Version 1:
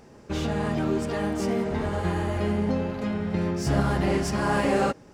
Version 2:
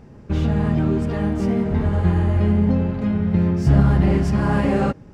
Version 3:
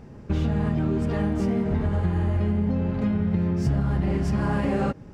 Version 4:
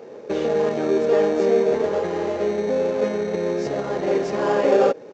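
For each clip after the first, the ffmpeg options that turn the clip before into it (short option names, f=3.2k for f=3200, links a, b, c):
-af "bass=f=250:g=12,treble=f=4k:g=-8"
-af "acompressor=threshold=-20dB:ratio=6"
-filter_complex "[0:a]asplit=2[a][b];[b]acrusher=samples=22:mix=1:aa=0.000001,volume=-8.5dB[c];[a][c]amix=inputs=2:normalize=0,highpass=f=470:t=q:w=4.2,aresample=16000,aresample=44100,volume=3dB"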